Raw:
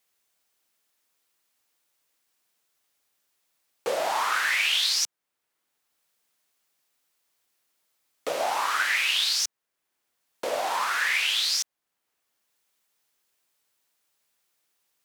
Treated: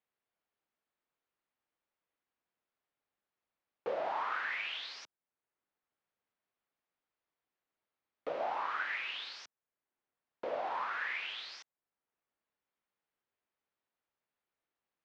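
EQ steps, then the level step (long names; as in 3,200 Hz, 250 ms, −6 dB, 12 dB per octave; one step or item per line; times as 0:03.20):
high-frequency loss of the air 210 metres
high-shelf EQ 3,000 Hz −10 dB
high-shelf EQ 8,400 Hz −8 dB
−7.0 dB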